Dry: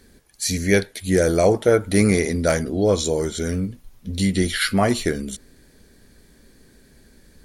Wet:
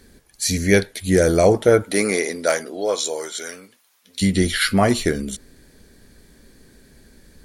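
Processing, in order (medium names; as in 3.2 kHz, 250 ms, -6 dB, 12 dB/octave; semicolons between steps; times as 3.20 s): 1.82–4.21 s: high-pass 320 Hz -> 1.2 kHz 12 dB/octave; trim +2 dB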